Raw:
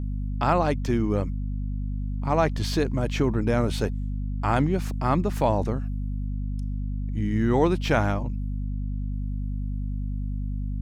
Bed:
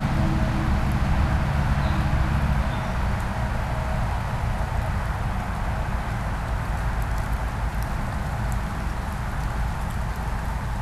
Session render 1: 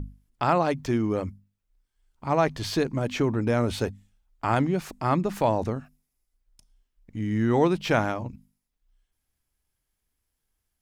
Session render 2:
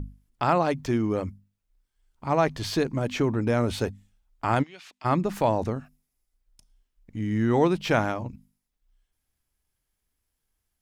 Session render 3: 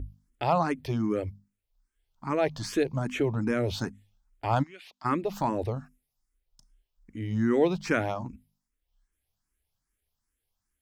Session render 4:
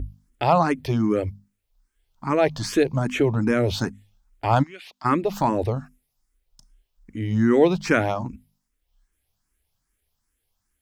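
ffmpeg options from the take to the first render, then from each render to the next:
-af "bandreject=f=50:t=h:w=6,bandreject=f=100:t=h:w=6,bandreject=f=150:t=h:w=6,bandreject=f=200:t=h:w=6,bandreject=f=250:t=h:w=6"
-filter_complex "[0:a]asplit=3[a][b][c];[a]afade=t=out:st=4.62:d=0.02[d];[b]bandpass=f=3.2k:t=q:w=1.5,afade=t=in:st=4.62:d=0.02,afade=t=out:st=5.04:d=0.02[e];[c]afade=t=in:st=5.04:d=0.02[f];[d][e][f]amix=inputs=3:normalize=0"
-filter_complex "[0:a]asplit=2[a][b];[b]afreqshift=2.5[c];[a][c]amix=inputs=2:normalize=1"
-af "volume=6.5dB"

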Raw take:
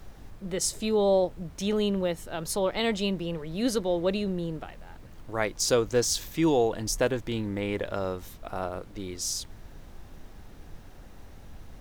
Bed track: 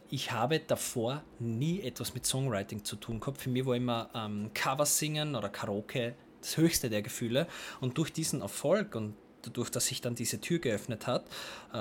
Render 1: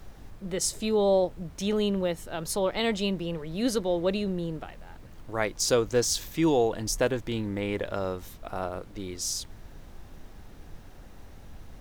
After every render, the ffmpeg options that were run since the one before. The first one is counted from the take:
-af anull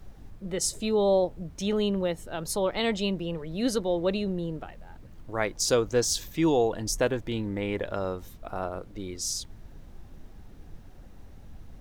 -af "afftdn=nr=6:nf=-48"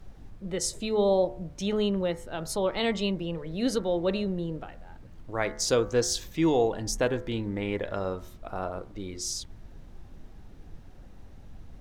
-af "highshelf=f=11k:g=-9.5,bandreject=f=72.03:t=h:w=4,bandreject=f=144.06:t=h:w=4,bandreject=f=216.09:t=h:w=4,bandreject=f=288.12:t=h:w=4,bandreject=f=360.15:t=h:w=4,bandreject=f=432.18:t=h:w=4,bandreject=f=504.21:t=h:w=4,bandreject=f=576.24:t=h:w=4,bandreject=f=648.27:t=h:w=4,bandreject=f=720.3:t=h:w=4,bandreject=f=792.33:t=h:w=4,bandreject=f=864.36:t=h:w=4,bandreject=f=936.39:t=h:w=4,bandreject=f=1.00842k:t=h:w=4,bandreject=f=1.08045k:t=h:w=4,bandreject=f=1.15248k:t=h:w=4,bandreject=f=1.22451k:t=h:w=4,bandreject=f=1.29654k:t=h:w=4,bandreject=f=1.36857k:t=h:w=4,bandreject=f=1.4406k:t=h:w=4,bandreject=f=1.51263k:t=h:w=4,bandreject=f=1.58466k:t=h:w=4,bandreject=f=1.65669k:t=h:w=4,bandreject=f=1.72872k:t=h:w=4,bandreject=f=1.80075k:t=h:w=4,bandreject=f=1.87278k:t=h:w=4,bandreject=f=1.94481k:t=h:w=4,bandreject=f=2.01684k:t=h:w=4,bandreject=f=2.08887k:t=h:w=4,bandreject=f=2.1609k:t=h:w=4,bandreject=f=2.23293k:t=h:w=4"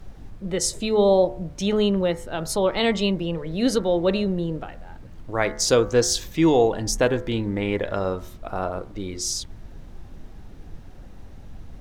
-af "volume=6dB"

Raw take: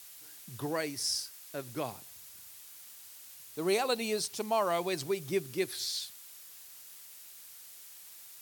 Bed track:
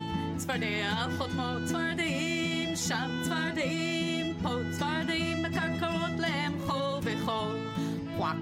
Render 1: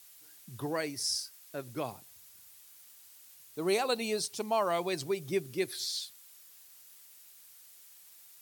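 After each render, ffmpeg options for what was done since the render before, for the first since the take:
-af "afftdn=nr=6:nf=-51"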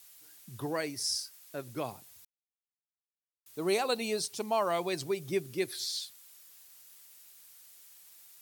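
-filter_complex "[0:a]asplit=3[a][b][c];[a]atrim=end=2.25,asetpts=PTS-STARTPTS,afade=t=out:st=2.246:d=0.004:c=hsin[d];[b]atrim=start=2.25:end=3.46,asetpts=PTS-STARTPTS,volume=0[e];[c]atrim=start=3.46,asetpts=PTS-STARTPTS,afade=t=in:d=0.004:c=hsin[f];[d][e][f]concat=n=3:v=0:a=1"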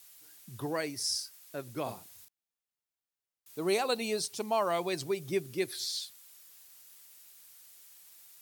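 -filter_complex "[0:a]asettb=1/sr,asplit=3[a][b][c];[a]atrim=end=1.834[d];[b]atrim=start=1.83:end=3.59,asetpts=PTS-STARTPTS,afade=t=in:d=0.004:c=qsin,afade=t=out:st=1.756:d=0.004:c=qsin,asplit=2[e][f];[f]adelay=35,volume=-3dB[g];[e][g]amix=inputs=2:normalize=0,atrim=end_sample=77616[h];[c]atrim=start=3.586[i];[d][h]acrossfade=d=0.004:c1=hsin:c2=qsin[j];[j][i]acrossfade=d=0.004:c1=qsin:c2=hsin"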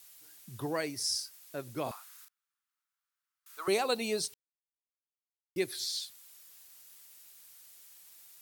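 -filter_complex "[0:a]asettb=1/sr,asplit=3[a][b][c];[a]atrim=end=1.914[d];[b]atrim=start=1.91:end=3.68,asetpts=PTS-STARTPTS,afade=t=in:d=0.004:c=qsin,afade=t=out:st=1.766:d=0.004:c=qsin,highpass=f=1.3k:t=q:w=4[e];[c]atrim=start=3.676[f];[d][e]acrossfade=d=0.004:c1=hsin:c2=qsin[g];[g][f]acrossfade=d=0.004:c1=qsin:c2=hsin,asplit=3[h][i][j];[h]atrim=end=4.34,asetpts=PTS-STARTPTS,afade=t=out:st=4.336:d=0.004:c=hsin[k];[i]atrim=start=4.34:end=5.56,asetpts=PTS-STARTPTS,volume=0[l];[j]atrim=start=5.56,asetpts=PTS-STARTPTS,afade=t=in:d=0.004:c=hsin[m];[k][l][m]concat=n=3:v=0:a=1"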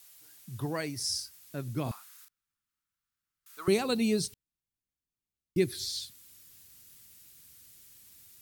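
-af "asubboost=boost=9:cutoff=230"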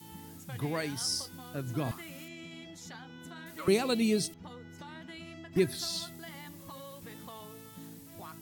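-filter_complex "[1:a]volume=-16dB[a];[0:a][a]amix=inputs=2:normalize=0"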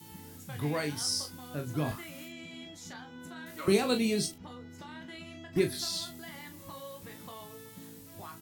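-af "aecho=1:1:20|40:0.422|0.355"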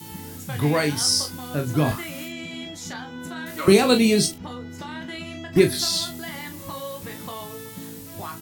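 -af "volume=11dB,alimiter=limit=-3dB:level=0:latency=1"

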